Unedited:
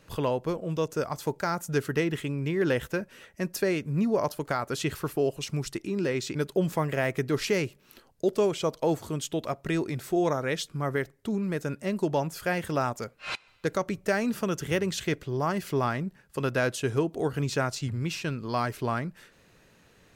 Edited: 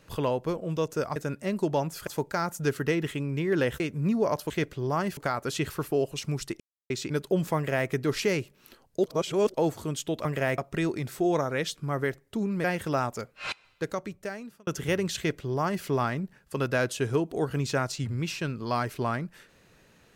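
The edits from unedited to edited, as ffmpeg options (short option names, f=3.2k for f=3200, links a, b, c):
-filter_complex "[0:a]asplit=14[a][b][c][d][e][f][g][h][i][j][k][l][m][n];[a]atrim=end=1.162[o];[b]atrim=start=11.558:end=12.472[p];[c]atrim=start=1.158:end=2.892[q];[d]atrim=start=3.718:end=4.422[r];[e]atrim=start=14.998:end=15.672[s];[f]atrim=start=4.418:end=5.85,asetpts=PTS-STARTPTS,afade=t=out:st=1.428:d=0.004:c=hsin[t];[g]atrim=start=5.85:end=6.15,asetpts=PTS-STARTPTS,volume=0[u];[h]atrim=start=6.15:end=8.312,asetpts=PTS-STARTPTS,afade=t=in:d=0.004:c=hsin[v];[i]atrim=start=8.308:end=8.792,asetpts=PTS-STARTPTS,areverse[w];[j]atrim=start=8.788:end=9.502[x];[k]atrim=start=6.808:end=7.142[y];[l]atrim=start=9.498:end=11.562[z];[m]atrim=start=12.468:end=14.5,asetpts=PTS-STARTPTS,afade=t=out:st=0.872:d=1.16[aa];[n]atrim=start=14.5,asetpts=PTS-STARTPTS,afade=t=in:d=0.004:c=hsin[ab];[o][p]acrossfade=d=0.004:c1=hsin:c2=hsin[ac];[ac][q]acrossfade=d=0.004:c1=hsin:c2=hsin[ad];[ad][r]acrossfade=d=0.004:c1=hsin:c2=hsin[ae];[ae][s]acrossfade=d=0.004:c1=hsin:c2=hsin[af];[t][u][v]concat=n=3:v=0:a=1[ag];[af][ag]acrossfade=d=0.004:c1=hsin:c2=hsin[ah];[ah][w]acrossfade=d=0.004:c1=hsin:c2=hsin[ai];[ai][x]acrossfade=d=0.004:c1=hsin:c2=hsin[aj];[aj][y]acrossfade=d=0.004:c1=hsin:c2=hsin[ak];[ak][z]acrossfade=d=0.004:c1=hsin:c2=hsin[al];[aa][ab]concat=n=2:v=0:a=1[am];[al][am]acrossfade=d=0.004:c1=hsin:c2=hsin"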